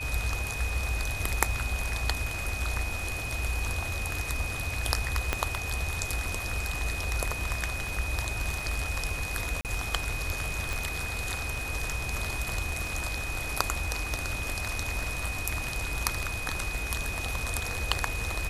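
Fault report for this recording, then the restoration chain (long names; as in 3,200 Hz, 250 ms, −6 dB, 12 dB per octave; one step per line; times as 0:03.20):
surface crackle 25 per second −38 dBFS
whistle 2,500 Hz −35 dBFS
0:05.33: click −11 dBFS
0:09.61–0:09.65: drop-out 38 ms
0:10.73: click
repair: click removal
notch filter 2,500 Hz, Q 30
repair the gap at 0:09.61, 38 ms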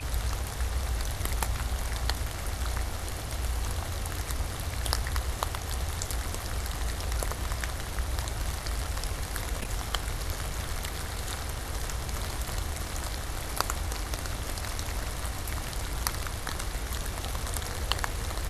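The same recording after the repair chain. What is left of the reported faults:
0:05.33: click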